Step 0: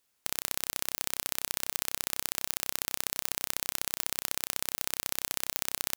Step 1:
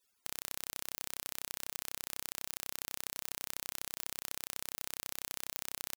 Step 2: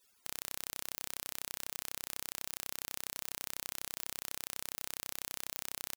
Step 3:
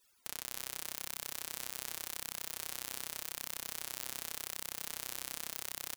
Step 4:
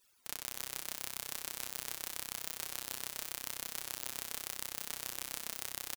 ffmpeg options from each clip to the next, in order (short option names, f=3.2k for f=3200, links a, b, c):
-af "alimiter=limit=-12.5dB:level=0:latency=1:release=163,afftfilt=real='re*gte(hypot(re,im),0.000158)':imag='im*gte(hypot(re,im),0.000158)':win_size=1024:overlap=0.75,volume=2dB"
-af "volume=18.5dB,asoftclip=hard,volume=-18.5dB,volume=7dB"
-filter_complex "[0:a]flanger=delay=0.6:depth=8.7:regen=-33:speed=0.87:shape=triangular,asplit=4[a][b][c][d];[b]adelay=305,afreqshift=130,volume=-9dB[e];[c]adelay=610,afreqshift=260,volume=-19.5dB[f];[d]adelay=915,afreqshift=390,volume=-29.9dB[g];[a][e][f][g]amix=inputs=4:normalize=0,volume=3.5dB"
-filter_complex "[0:a]tremolo=f=200:d=0.519,asplit=2[a][b];[b]adelay=40,volume=-13dB[c];[a][c]amix=inputs=2:normalize=0,volume=2.5dB"